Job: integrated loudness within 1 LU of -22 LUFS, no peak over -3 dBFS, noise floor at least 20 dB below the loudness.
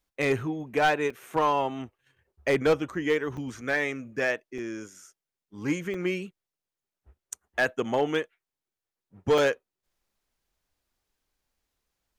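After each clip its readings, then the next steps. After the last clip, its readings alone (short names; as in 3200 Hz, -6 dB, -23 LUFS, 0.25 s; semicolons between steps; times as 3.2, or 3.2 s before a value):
clipped 0.3%; flat tops at -16.0 dBFS; dropouts 5; longest dropout 4.0 ms; loudness -28.0 LUFS; peak -16.0 dBFS; loudness target -22.0 LUFS
-> clip repair -16 dBFS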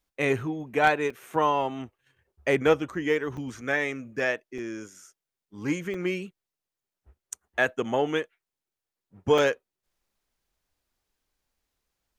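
clipped 0.0%; dropouts 5; longest dropout 4.0 ms
-> interpolate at 1.1/3.37/4.58/5.94/9.38, 4 ms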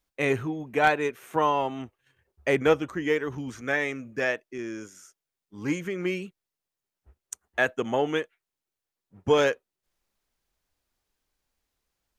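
dropouts 0; loudness -27.0 LUFS; peak -7.0 dBFS; loudness target -22.0 LUFS
-> gain +5 dB; limiter -3 dBFS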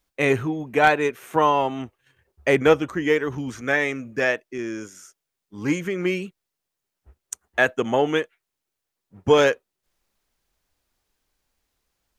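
loudness -22.5 LUFS; peak -3.0 dBFS; noise floor -83 dBFS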